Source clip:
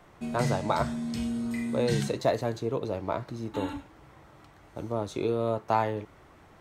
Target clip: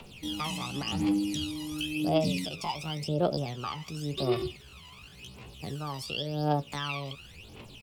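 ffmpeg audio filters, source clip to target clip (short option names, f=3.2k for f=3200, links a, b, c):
-filter_complex "[0:a]highshelf=f=1.7k:t=q:w=3:g=8.5,acrossover=split=81|3200[a][b][c];[a]acompressor=threshold=-54dB:ratio=4[d];[b]acompressor=threshold=-29dB:ratio=4[e];[c]acompressor=threshold=-47dB:ratio=4[f];[d][e][f]amix=inputs=3:normalize=0,asplit=2[g][h];[h]alimiter=level_in=0.5dB:limit=-24dB:level=0:latency=1:release=61,volume=-0.5dB,volume=-1.5dB[i];[g][i]amix=inputs=2:normalize=0,asetrate=37220,aresample=44100,aphaser=in_gain=1:out_gain=1:delay=1.6:decay=0.77:speed=0.92:type=triangular,asetrate=68011,aresample=44100,atempo=0.64842,asplit=2[j][k];[k]adelay=14,volume=-13.5dB[l];[j][l]amix=inputs=2:normalize=0,volume=-7.5dB"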